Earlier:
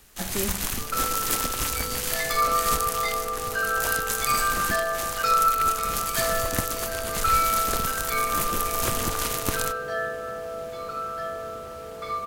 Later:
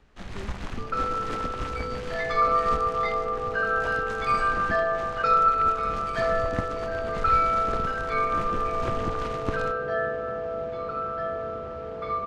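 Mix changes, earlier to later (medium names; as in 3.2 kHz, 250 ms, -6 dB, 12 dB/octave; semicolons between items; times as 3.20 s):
speech -9.5 dB; second sound +5.0 dB; master: add tape spacing loss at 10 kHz 34 dB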